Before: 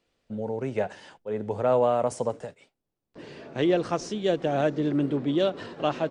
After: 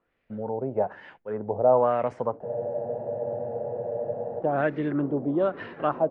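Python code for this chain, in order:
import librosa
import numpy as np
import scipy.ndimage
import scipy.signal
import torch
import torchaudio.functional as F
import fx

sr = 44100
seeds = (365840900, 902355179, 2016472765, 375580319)

y = fx.filter_lfo_lowpass(x, sr, shape='sine', hz=1.1, low_hz=670.0, high_hz=2200.0, q=2.5)
y = fx.spec_freeze(y, sr, seeds[0], at_s=2.47, hold_s=1.94)
y = y * 10.0 ** (-2.0 / 20.0)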